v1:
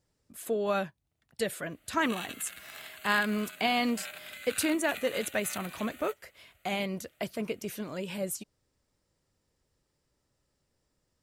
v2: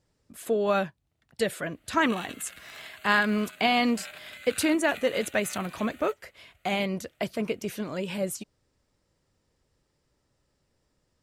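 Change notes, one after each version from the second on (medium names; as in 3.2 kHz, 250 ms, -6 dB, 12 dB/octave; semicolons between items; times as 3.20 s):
speech +4.5 dB; master: add treble shelf 9 kHz -8.5 dB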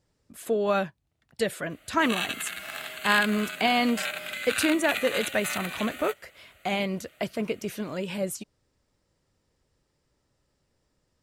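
background +11.5 dB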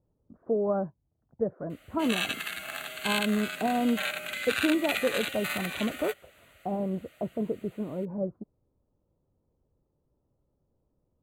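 speech: add Bessel low-pass 660 Hz, order 8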